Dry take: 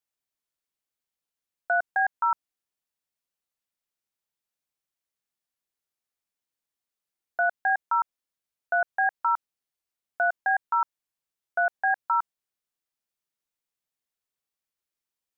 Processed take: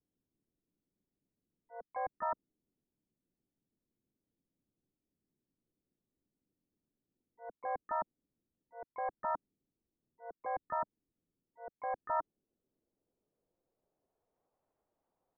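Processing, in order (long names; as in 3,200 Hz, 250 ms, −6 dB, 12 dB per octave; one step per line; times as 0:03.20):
low-pass filter sweep 290 Hz → 720 Hz, 0:11.91–0:14.50
volume swells 747 ms
pitch-shifted copies added −7 semitones −5 dB, −5 semitones −11 dB, +5 semitones −9 dB
level +11 dB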